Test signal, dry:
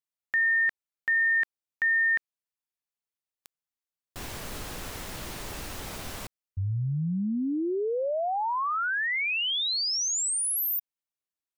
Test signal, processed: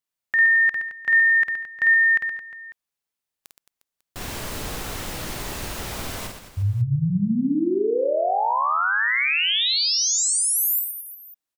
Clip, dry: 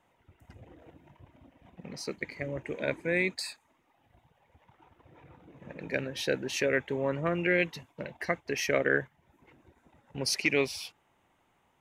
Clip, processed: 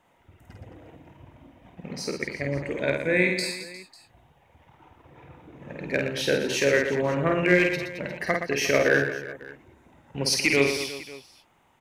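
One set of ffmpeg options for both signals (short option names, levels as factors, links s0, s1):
-af "asoftclip=type=hard:threshold=0.168,aecho=1:1:50|120|218|355.2|547.3:0.631|0.398|0.251|0.158|0.1,volume=1.68"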